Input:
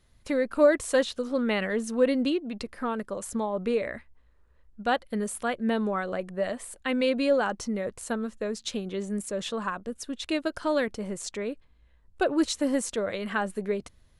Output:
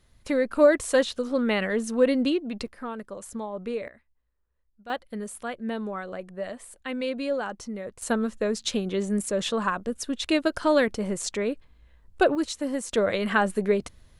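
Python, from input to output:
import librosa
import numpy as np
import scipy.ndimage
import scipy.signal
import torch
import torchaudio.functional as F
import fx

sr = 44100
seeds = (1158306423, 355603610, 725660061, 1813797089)

y = fx.gain(x, sr, db=fx.steps((0.0, 2.0), (2.68, -4.5), (3.88, -15.5), (4.9, -4.5), (8.02, 5.0), (12.35, -3.0), (12.93, 6.0)))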